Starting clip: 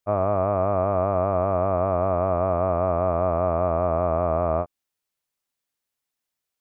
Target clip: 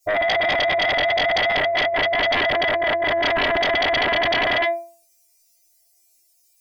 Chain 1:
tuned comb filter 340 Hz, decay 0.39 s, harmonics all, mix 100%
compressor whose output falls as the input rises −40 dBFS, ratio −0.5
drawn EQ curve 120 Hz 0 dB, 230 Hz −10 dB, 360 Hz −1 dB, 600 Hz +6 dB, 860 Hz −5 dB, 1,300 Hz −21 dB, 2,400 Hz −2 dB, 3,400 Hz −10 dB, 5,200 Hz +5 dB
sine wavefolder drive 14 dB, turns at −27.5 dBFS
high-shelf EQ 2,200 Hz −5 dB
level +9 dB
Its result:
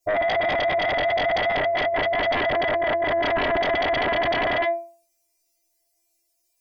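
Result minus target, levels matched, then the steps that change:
4,000 Hz band −4.5 dB
change: high-shelf EQ 2,200 Hz +6 dB

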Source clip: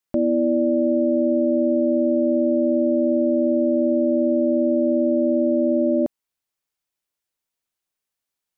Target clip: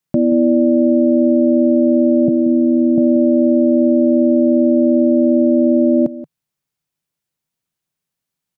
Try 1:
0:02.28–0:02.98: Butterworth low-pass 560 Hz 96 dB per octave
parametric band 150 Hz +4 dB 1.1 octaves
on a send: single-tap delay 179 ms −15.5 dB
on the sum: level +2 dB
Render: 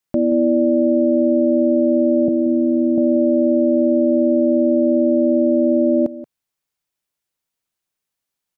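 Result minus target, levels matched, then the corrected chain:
125 Hz band −5.0 dB
0:02.28–0:02.98: Butterworth low-pass 560 Hz 96 dB per octave
parametric band 150 Hz +15 dB 1.1 octaves
on a send: single-tap delay 179 ms −15.5 dB
on the sum: level +2 dB

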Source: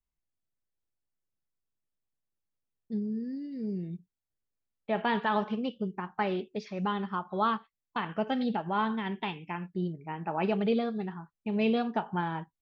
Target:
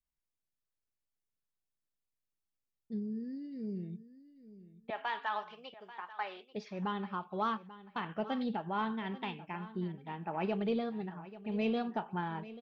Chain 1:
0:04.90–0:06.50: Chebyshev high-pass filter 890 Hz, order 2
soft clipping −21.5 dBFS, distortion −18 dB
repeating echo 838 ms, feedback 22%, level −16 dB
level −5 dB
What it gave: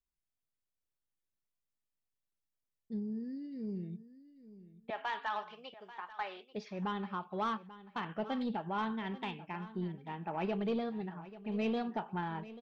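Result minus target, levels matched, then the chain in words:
soft clipping: distortion +10 dB
0:04.90–0:06.50: Chebyshev high-pass filter 890 Hz, order 2
soft clipping −15.5 dBFS, distortion −28 dB
repeating echo 838 ms, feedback 22%, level −16 dB
level −5 dB

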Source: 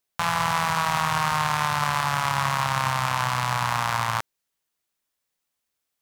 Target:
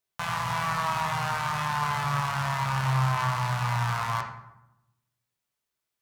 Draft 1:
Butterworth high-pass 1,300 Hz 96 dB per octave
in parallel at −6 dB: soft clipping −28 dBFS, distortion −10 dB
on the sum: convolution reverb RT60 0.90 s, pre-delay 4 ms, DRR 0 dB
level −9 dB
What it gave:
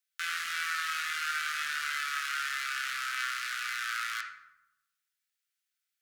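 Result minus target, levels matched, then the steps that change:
1,000 Hz band −5.5 dB
remove: Butterworth high-pass 1,300 Hz 96 dB per octave

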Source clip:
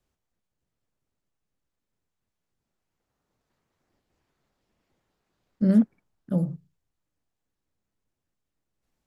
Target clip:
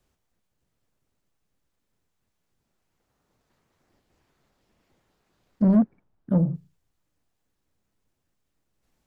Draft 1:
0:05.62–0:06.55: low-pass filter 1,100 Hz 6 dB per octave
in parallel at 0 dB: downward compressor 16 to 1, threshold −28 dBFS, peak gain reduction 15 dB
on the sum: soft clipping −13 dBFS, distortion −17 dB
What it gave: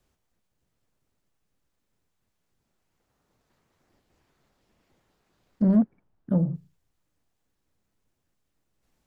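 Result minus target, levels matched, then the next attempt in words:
downward compressor: peak gain reduction +10.5 dB
0:05.62–0:06.55: low-pass filter 1,100 Hz 6 dB per octave
in parallel at 0 dB: downward compressor 16 to 1, threshold −17 dBFS, peak gain reduction 4.5 dB
on the sum: soft clipping −13 dBFS, distortion −14 dB

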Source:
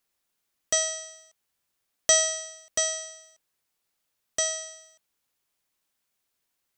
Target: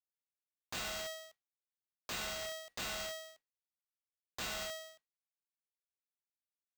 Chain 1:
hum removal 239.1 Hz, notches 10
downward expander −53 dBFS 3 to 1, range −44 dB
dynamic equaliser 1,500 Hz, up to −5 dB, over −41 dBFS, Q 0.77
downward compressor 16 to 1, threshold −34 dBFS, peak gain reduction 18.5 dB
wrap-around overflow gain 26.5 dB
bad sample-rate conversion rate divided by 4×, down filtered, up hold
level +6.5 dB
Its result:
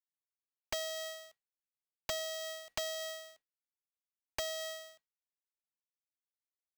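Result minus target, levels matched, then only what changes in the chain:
wrap-around overflow: distortion −12 dB
change: wrap-around overflow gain 35.5 dB

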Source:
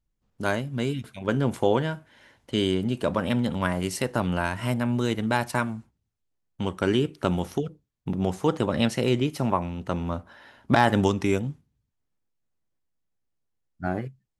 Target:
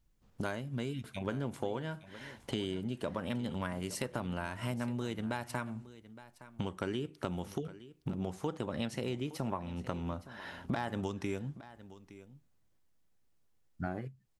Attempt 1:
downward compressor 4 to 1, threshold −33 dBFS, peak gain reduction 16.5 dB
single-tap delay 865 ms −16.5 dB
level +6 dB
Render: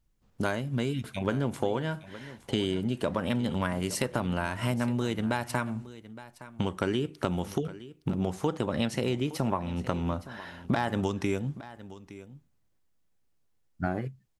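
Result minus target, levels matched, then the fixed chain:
downward compressor: peak gain reduction −7.5 dB
downward compressor 4 to 1, threshold −43 dBFS, peak gain reduction 24 dB
single-tap delay 865 ms −16.5 dB
level +6 dB

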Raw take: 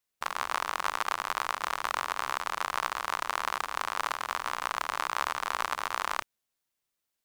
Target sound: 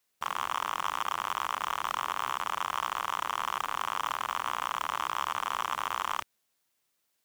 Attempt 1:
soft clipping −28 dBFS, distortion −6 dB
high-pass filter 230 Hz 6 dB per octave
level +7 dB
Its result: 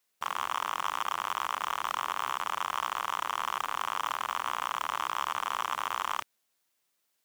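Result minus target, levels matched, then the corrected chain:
125 Hz band −4.0 dB
soft clipping −28 dBFS, distortion −6 dB
high-pass filter 110 Hz 6 dB per octave
level +7 dB

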